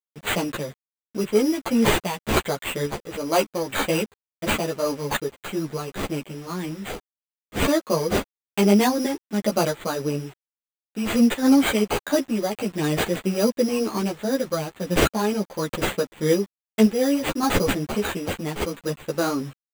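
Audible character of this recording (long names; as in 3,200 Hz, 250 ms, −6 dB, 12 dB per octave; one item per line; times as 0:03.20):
aliases and images of a low sample rate 5,400 Hz, jitter 0%
sample-and-hold tremolo
a quantiser's noise floor 8 bits, dither none
a shimmering, thickened sound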